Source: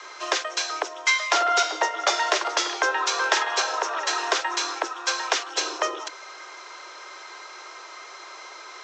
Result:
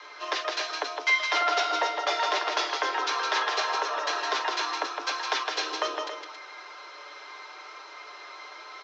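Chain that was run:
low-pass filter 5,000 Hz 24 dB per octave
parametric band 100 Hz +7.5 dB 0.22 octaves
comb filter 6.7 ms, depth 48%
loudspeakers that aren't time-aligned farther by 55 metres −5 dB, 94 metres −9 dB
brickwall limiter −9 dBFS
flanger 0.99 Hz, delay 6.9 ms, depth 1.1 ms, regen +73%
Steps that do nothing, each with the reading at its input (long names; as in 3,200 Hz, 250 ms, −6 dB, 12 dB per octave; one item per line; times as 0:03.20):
parametric band 100 Hz: nothing at its input below 270 Hz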